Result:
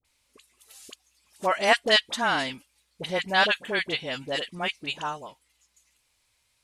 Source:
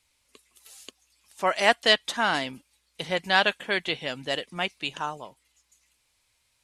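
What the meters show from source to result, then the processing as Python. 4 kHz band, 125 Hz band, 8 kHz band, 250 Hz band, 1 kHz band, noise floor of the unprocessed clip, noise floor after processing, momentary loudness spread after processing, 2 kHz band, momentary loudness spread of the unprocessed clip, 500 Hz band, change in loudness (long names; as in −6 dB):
0.0 dB, 0.0 dB, 0.0 dB, 0.0 dB, 0.0 dB, −71 dBFS, −71 dBFS, 13 LU, 0.0 dB, 13 LU, 0.0 dB, 0.0 dB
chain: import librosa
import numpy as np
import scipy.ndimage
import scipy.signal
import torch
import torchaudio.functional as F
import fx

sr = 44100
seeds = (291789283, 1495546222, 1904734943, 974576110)

y = fx.dispersion(x, sr, late='highs', ms=48.0, hz=1000.0)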